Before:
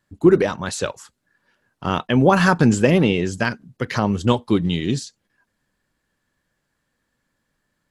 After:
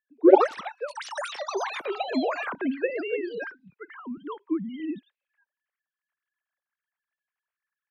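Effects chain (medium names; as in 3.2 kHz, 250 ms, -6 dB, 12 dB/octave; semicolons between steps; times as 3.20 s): formants replaced by sine waves; 3.44–4.80 s: static phaser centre 2.6 kHz, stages 6; ever faster or slower copies 111 ms, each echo +7 st, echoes 3; trim -9 dB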